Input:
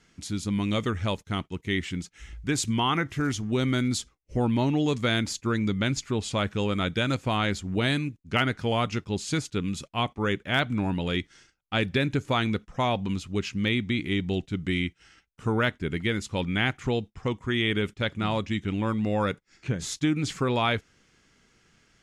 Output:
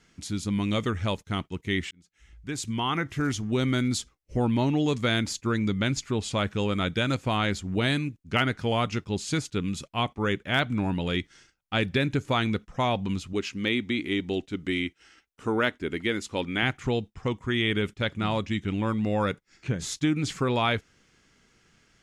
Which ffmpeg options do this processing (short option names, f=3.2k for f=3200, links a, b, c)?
-filter_complex "[0:a]asettb=1/sr,asplit=3[a][b][c];[a]atrim=end=13.334[d];[b]atrim=start=13.33:end=16.63,asetpts=PTS-STARTPTS,afade=t=in:d=0.004:c=qsin,afade=t=out:st=3.296:d=0.004:c=qsin,lowshelf=f=210:t=q:w=1.5:g=-7[e];[c]atrim=start=16.626[f];[d][e]acrossfade=d=0.004:c1=hsin:c2=qsin[g];[g][f]acrossfade=d=0.004:c1=qsin:c2=hsin,asplit=2[h][i];[h]atrim=end=1.91,asetpts=PTS-STARTPTS,afade=t=out:st=1.906:d=0.004:c=hsin[j];[i]atrim=start=1.91,asetpts=PTS-STARTPTS,afade=t=in:d=1.32[k];[j][k]concat=n=2:v=0:a=1"